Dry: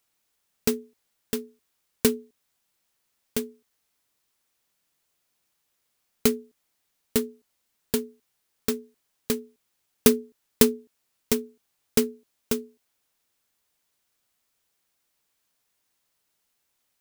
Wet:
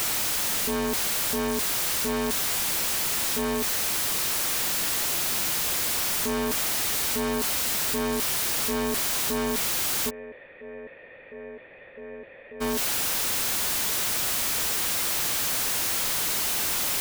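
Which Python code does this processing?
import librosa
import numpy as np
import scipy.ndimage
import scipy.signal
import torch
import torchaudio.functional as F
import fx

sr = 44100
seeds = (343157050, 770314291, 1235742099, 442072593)

y = np.sign(x) * np.sqrt(np.mean(np.square(x)))
y = fx.formant_cascade(y, sr, vowel='e', at=(10.09, 12.6), fade=0.02)
y = y * 10.0 ** (6.0 / 20.0)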